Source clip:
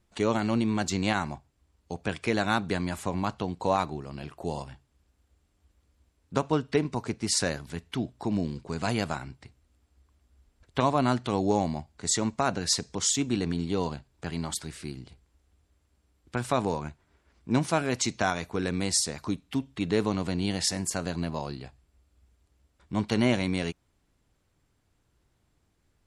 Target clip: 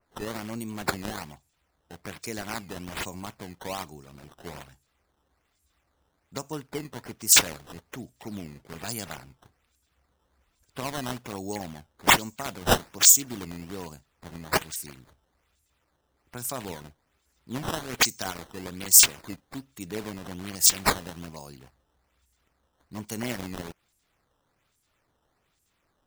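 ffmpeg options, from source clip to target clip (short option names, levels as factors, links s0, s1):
-af "aexciter=amount=11.2:drive=4.6:freq=5800,acrusher=samples=11:mix=1:aa=0.000001:lfo=1:lforange=17.6:lforate=1.2,adynamicequalizer=threshold=0.0398:dfrequency=2300:dqfactor=0.7:tfrequency=2300:tqfactor=0.7:attack=5:release=100:ratio=0.375:range=2:mode=boostabove:tftype=highshelf,volume=0.335"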